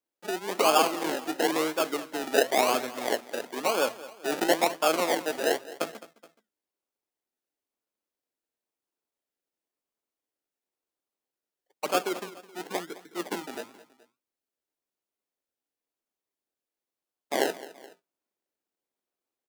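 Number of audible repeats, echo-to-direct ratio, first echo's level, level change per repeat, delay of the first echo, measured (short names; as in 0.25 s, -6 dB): 2, -16.5 dB, -17.5 dB, -6.0 dB, 0.212 s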